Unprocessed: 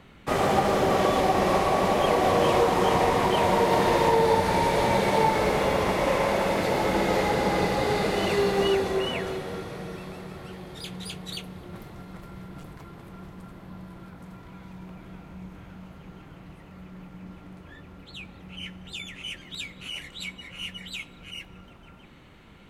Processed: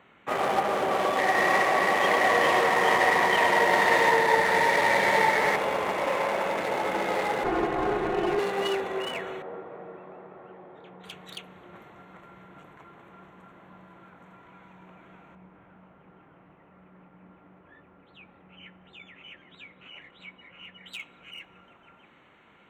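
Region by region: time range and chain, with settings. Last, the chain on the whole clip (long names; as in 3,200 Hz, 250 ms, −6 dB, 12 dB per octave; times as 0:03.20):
0:01.17–0:05.56: parametric band 1,900 Hz +14 dB 0.23 octaves + echo with a time of its own for lows and highs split 1,100 Hz, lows 201 ms, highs 102 ms, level −6 dB
0:07.44–0:08.39: lower of the sound and its delayed copy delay 2.7 ms + spectral tilt −4 dB per octave + comb filter 5.6 ms, depth 69%
0:09.42–0:11.04: resonant band-pass 680 Hz, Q 0.71 + spectral tilt −2.5 dB per octave
0:15.35–0:20.86: head-to-tape spacing loss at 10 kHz 25 dB + one half of a high-frequency compander decoder only
whole clip: adaptive Wiener filter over 9 samples; high-pass filter 780 Hz 6 dB per octave; level +1.5 dB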